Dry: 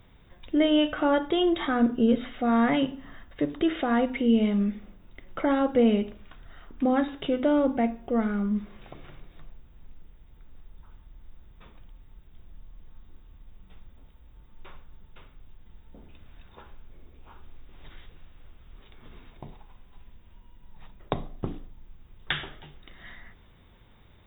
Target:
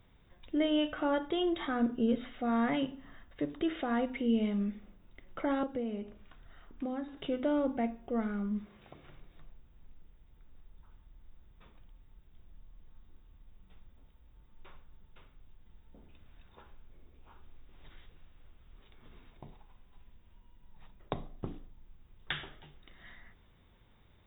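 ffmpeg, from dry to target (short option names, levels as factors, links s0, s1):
-filter_complex "[0:a]asettb=1/sr,asplit=3[s0][s1][s2];[s0]atrim=end=5.634[s3];[s1]atrim=start=5.63:end=7.17,asetpts=PTS-STARTPTS,afade=t=in:d=0.004:c=qsin,afade=t=out:st=1.536:d=0.004:c=qsin,acrossover=split=540|1900[s4][s5][s6];[s4]acompressor=threshold=0.0398:ratio=4[s7];[s5]acompressor=threshold=0.0112:ratio=4[s8];[s6]acompressor=threshold=0.00158:ratio=4[s9];[s7][s8][s9]amix=inputs=3:normalize=0[s10];[s2]atrim=start=7.166[s11];[s3][s10]acrossfade=d=0.004:c1=hsin:c2=qsin[s12];[s12][s11]acrossfade=d=0.004:c1=qsin:c2=hsin,asettb=1/sr,asplit=3[s13][s14][s15];[s13]atrim=end=8.634[s16];[s14]atrim=start=8.63:end=9.05,asetpts=PTS-STARTPTS,afade=t=in:d=0.004:c=qsin,afade=t=out:st=0.416:d=0.004:c=qsin,highpass=53[s17];[s15]atrim=start=9.046[s18];[s16][s17]acrossfade=d=0.004:c1=hsin:c2=qsin[s19];[s19][s18]acrossfade=d=0.004:c1=qsin:c2=hsin,volume=0.422"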